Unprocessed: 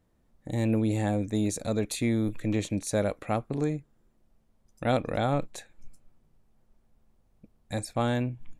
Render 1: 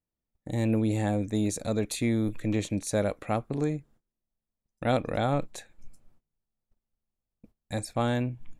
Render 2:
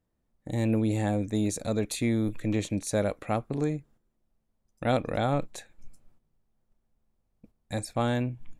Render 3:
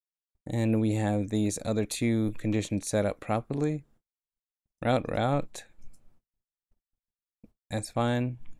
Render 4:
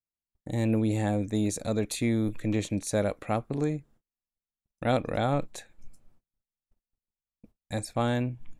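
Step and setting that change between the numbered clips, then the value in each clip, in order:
noise gate, range: −22, −9, −55, −36 decibels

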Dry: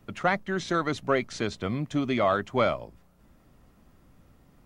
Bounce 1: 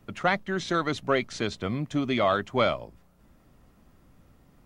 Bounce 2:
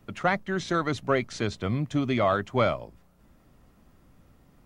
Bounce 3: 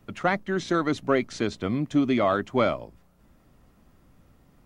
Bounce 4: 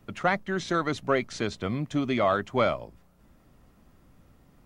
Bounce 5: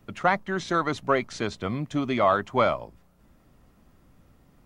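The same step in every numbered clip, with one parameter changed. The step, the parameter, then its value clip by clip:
dynamic equaliser, frequency: 3,400, 110, 290, 9,000, 970 Hertz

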